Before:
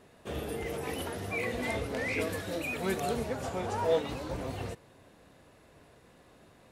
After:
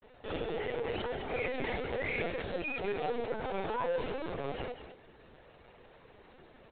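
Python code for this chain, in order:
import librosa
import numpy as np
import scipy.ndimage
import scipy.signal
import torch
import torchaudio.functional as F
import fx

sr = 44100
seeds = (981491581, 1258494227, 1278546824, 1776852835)

p1 = scipy.signal.sosfilt(scipy.signal.butter(2, 220.0, 'highpass', fs=sr, output='sos'), x)
p2 = fx.notch(p1, sr, hz=1100.0, q=15.0)
p3 = fx.rider(p2, sr, range_db=5, speed_s=2.0)
p4 = p2 + (p3 * 10.0 ** (-0.5 / 20.0))
p5 = fx.pitch_keep_formants(p4, sr, semitones=1.0)
p6 = np.clip(p5, -10.0 ** (-24.5 / 20.0), 10.0 ** (-24.5 / 20.0))
p7 = fx.granulator(p6, sr, seeds[0], grain_ms=100.0, per_s=20.0, spray_ms=22.0, spread_st=0)
p8 = p7 + fx.echo_single(p7, sr, ms=204, db=-10.5, dry=0)
p9 = fx.lpc_vocoder(p8, sr, seeds[1], excitation='pitch_kept', order=16)
y = p9 * 10.0 ** (-4.0 / 20.0)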